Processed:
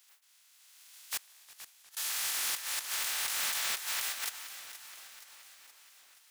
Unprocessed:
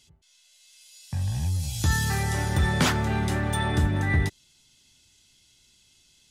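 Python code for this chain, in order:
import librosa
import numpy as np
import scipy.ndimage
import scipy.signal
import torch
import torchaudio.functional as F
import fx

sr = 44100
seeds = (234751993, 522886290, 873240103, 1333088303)

y = fx.spec_flatten(x, sr, power=0.17)
y = scipy.signal.sosfilt(scipy.signal.butter(2, 1200.0, 'highpass', fs=sr, output='sos'), y)
y = fx.over_compress(y, sr, threshold_db=-28.0, ratio=-0.5)
y = fx.gate_flip(y, sr, shuts_db=-22.0, range_db=-27, at=(1.17, 1.97))
y = 10.0 ** (-20.0 / 20.0) * (np.abs((y / 10.0 ** (-20.0 / 20.0) + 3.0) % 4.0 - 2.0) - 1.0)
y = fx.echo_feedback(y, sr, ms=473, feedback_pct=56, wet_db=-13)
y = fx.echo_warbled(y, sr, ms=353, feedback_pct=64, rate_hz=2.8, cents=187, wet_db=-20)
y = F.gain(torch.from_numpy(y), -6.0).numpy()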